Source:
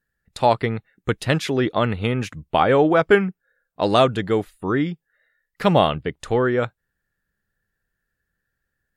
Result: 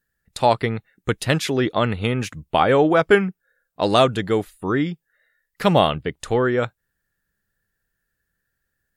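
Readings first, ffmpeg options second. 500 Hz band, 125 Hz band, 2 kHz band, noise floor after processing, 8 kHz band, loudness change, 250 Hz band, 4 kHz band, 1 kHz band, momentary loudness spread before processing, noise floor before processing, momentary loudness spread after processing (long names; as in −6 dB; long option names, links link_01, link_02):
0.0 dB, 0.0 dB, +0.5 dB, −78 dBFS, can't be measured, 0.0 dB, 0.0 dB, +2.0 dB, 0.0 dB, 11 LU, −80 dBFS, 11 LU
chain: -af "highshelf=frequency=5200:gain=7"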